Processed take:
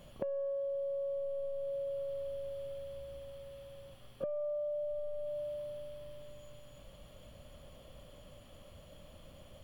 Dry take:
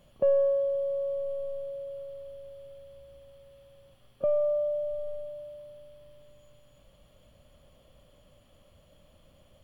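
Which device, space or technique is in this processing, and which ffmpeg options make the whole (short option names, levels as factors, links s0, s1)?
serial compression, peaks first: -af "acompressor=threshold=0.0158:ratio=5,acompressor=threshold=0.00794:ratio=2.5,volume=1.78"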